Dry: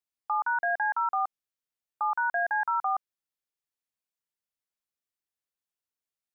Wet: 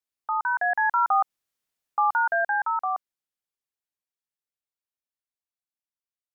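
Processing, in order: Doppler pass-by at 1.53 s, 11 m/s, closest 7.1 m; trim +8 dB

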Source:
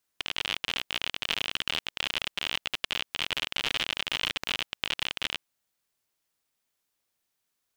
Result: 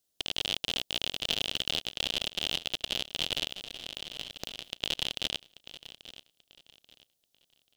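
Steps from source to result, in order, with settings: high-order bell 1.5 kHz -11.5 dB; 3.51–4.70 s: compressor with a negative ratio -45 dBFS, ratio -1; feedback delay 836 ms, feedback 28%, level -15.5 dB; trim +2 dB

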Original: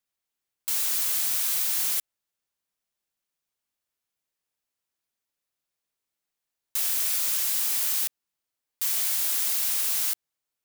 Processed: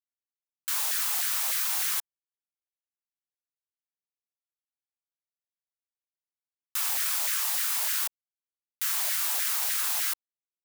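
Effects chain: send-on-delta sampling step -26 dBFS; LFO high-pass saw down 3.3 Hz 660–1800 Hz; trim -2.5 dB

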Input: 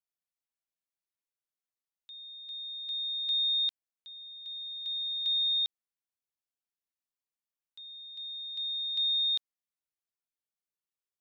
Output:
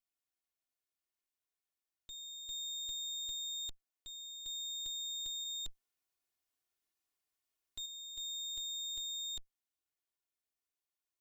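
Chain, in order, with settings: comb filter that takes the minimum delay 2.8 ms; 5.44–7.86 s: compressor with a negative ratio -37 dBFS, ratio -1; peak limiter -36 dBFS, peak gain reduction 12 dB; trim +1 dB

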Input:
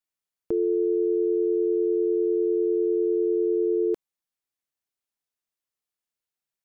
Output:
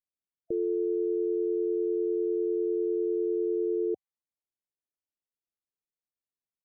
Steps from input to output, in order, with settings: level-controlled noise filter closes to 650 Hz, open at -21 dBFS; loudest bins only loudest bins 32; trim -5 dB

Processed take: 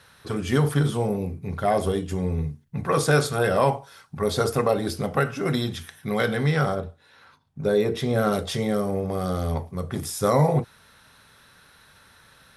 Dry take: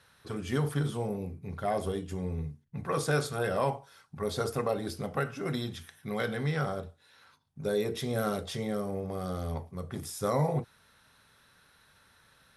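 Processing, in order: 6.74–8.31 s: treble shelf 3.2 kHz -> 5 kHz -9.5 dB; trim +8.5 dB

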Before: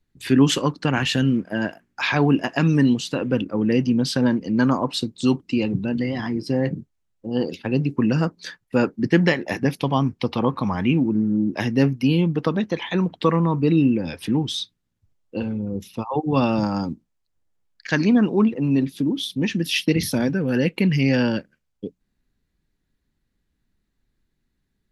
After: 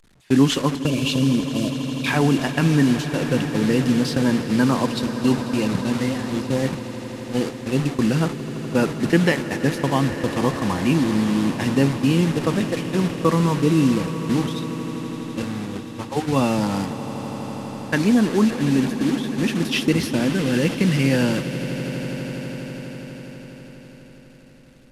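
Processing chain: one-bit delta coder 64 kbps, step -24 dBFS; spectral selection erased 0.86–2.06 s, 670–2200 Hz; gate -24 dBFS, range -26 dB; treble shelf 6.8 kHz -4.5 dB; on a send: echo with a slow build-up 82 ms, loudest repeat 8, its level -17.5 dB

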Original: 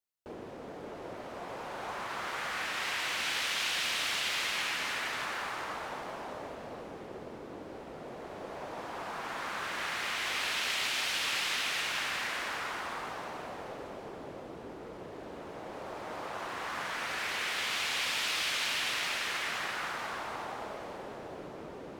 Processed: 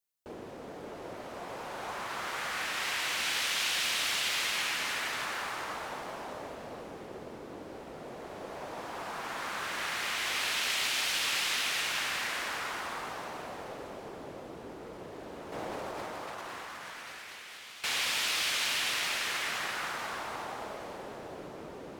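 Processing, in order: treble shelf 5.6 kHz +6 dB; 15.52–17.84 s: compressor with a negative ratio -43 dBFS, ratio -1

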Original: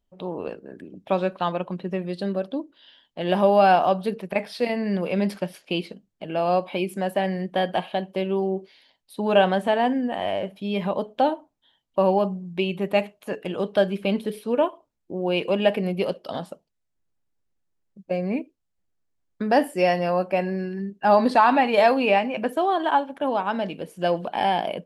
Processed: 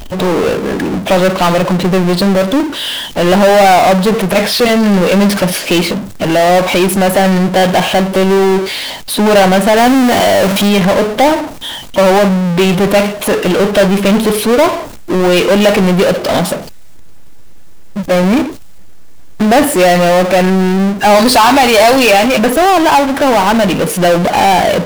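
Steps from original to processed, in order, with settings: 9.77–10.69 s: jump at every zero crossing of -35.5 dBFS; 21.15–22.39 s: tone controls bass -6 dB, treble +15 dB; power-law waveshaper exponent 0.35; trim +4 dB

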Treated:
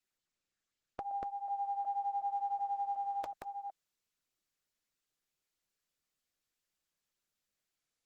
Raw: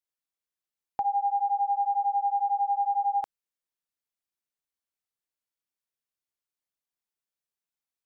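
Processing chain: chunks repeated in reverse 370 ms, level -2 dB; Butterworth band-stop 890 Hz, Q 2.2; Opus 16 kbps 48 kHz

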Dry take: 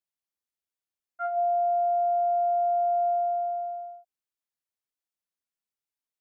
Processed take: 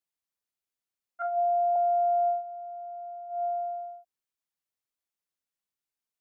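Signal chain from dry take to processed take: 1.22–1.76 s: low-pass 1.2 kHz 12 dB/octave; 2.28–3.44 s: dip -15 dB, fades 0.15 s

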